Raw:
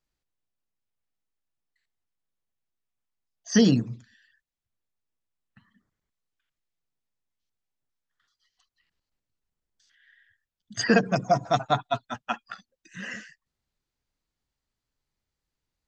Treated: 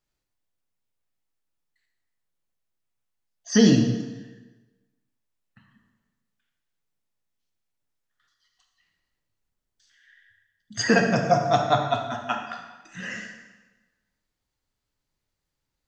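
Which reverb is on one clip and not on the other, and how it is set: plate-style reverb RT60 1.2 s, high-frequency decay 0.85×, DRR 2 dB; trim +1 dB

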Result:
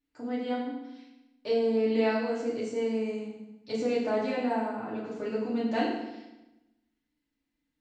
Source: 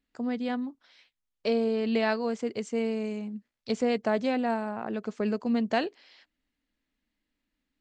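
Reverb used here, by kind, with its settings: FDN reverb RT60 0.99 s, low-frequency decay 1.3×, high-frequency decay 0.85×, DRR -7.5 dB; trim -10.5 dB

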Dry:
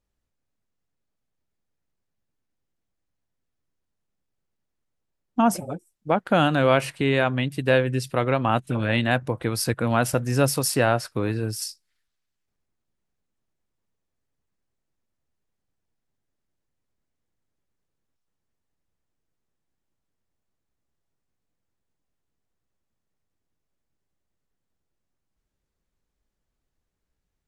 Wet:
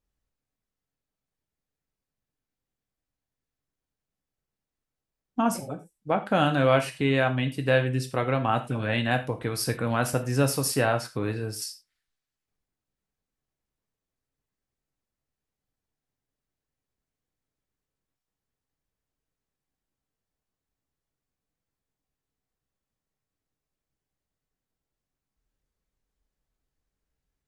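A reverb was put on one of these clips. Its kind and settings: gated-style reverb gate 130 ms falling, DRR 5.5 dB; trim -4 dB

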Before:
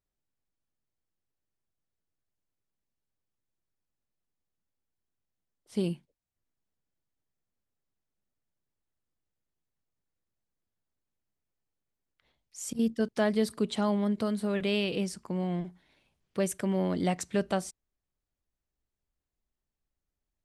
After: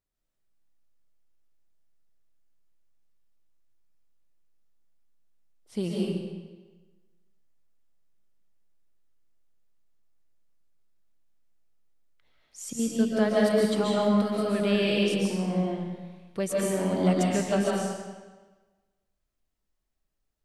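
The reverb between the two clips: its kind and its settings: algorithmic reverb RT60 1.3 s, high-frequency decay 0.9×, pre-delay 100 ms, DRR -4.5 dB; trim -1 dB

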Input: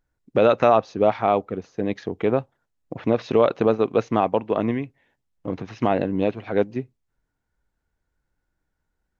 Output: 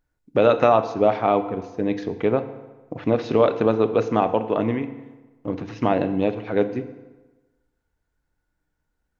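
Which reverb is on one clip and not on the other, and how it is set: FDN reverb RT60 1.2 s, low-frequency decay 0.95×, high-frequency decay 0.75×, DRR 9 dB

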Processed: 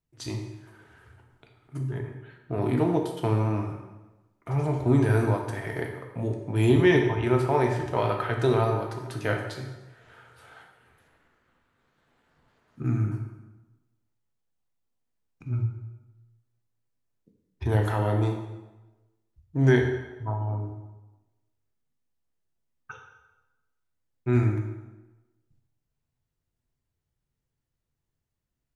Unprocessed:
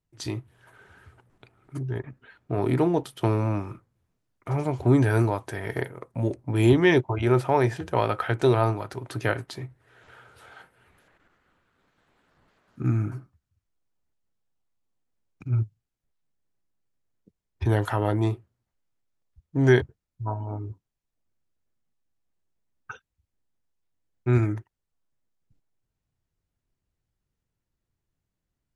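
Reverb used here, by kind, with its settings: plate-style reverb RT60 1.1 s, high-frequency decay 0.8×, DRR 2 dB; trim -3.5 dB

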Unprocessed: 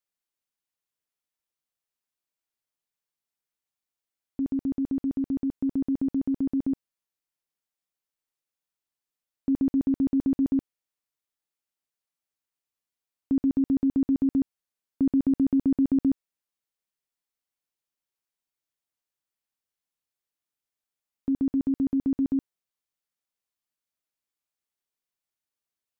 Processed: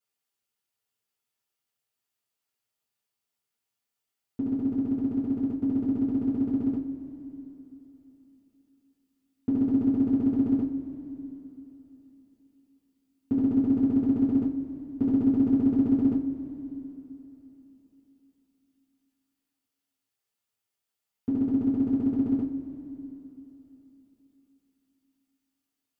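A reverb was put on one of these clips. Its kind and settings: two-slope reverb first 0.27 s, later 3.5 s, from -20 dB, DRR -10 dB; trim -6 dB

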